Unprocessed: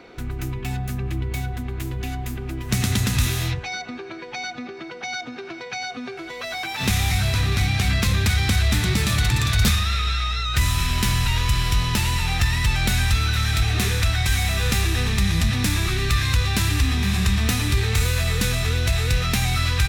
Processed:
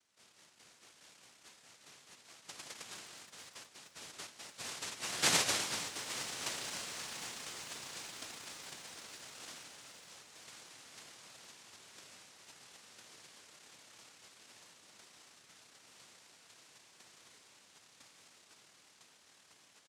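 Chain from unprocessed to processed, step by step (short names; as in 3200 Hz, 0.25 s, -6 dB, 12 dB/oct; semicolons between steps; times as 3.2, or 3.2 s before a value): Doppler pass-by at 5.33, 30 m/s, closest 3.8 m; notch 540 Hz, Q 12; comb 3.4 ms, depth 94%; de-hum 202 Hz, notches 31; noise vocoder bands 1; lo-fi delay 0.469 s, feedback 80%, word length 8-bit, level -14.5 dB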